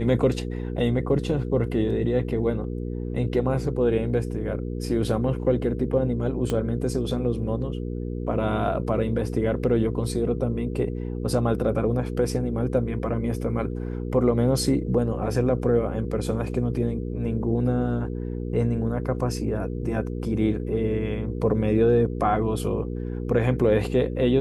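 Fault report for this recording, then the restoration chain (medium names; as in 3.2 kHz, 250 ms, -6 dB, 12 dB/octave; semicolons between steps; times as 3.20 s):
hum 60 Hz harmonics 8 -30 dBFS
6.50 s: pop -14 dBFS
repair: de-click; de-hum 60 Hz, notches 8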